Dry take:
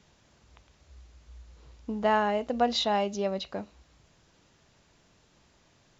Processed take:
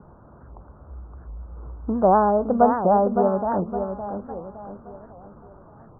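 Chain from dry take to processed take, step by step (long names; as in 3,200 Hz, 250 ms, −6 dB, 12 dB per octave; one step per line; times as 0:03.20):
mu-law and A-law mismatch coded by mu
Butterworth low-pass 1,400 Hz 72 dB per octave
on a send: repeating echo 563 ms, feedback 42%, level −7 dB
on the sum: wow of a warped record 78 rpm, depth 250 cents
level +7.5 dB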